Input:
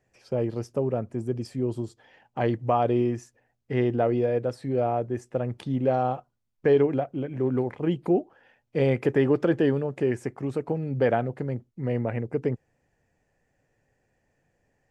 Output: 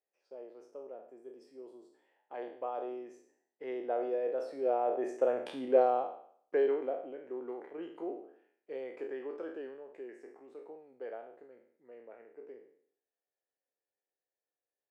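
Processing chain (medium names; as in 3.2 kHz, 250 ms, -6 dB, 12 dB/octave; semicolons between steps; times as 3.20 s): spectral sustain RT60 0.61 s; Doppler pass-by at 5.46 s, 9 m/s, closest 4.8 m; high-pass 390 Hz 24 dB/octave; tilt EQ -2.5 dB/octave; trim -2.5 dB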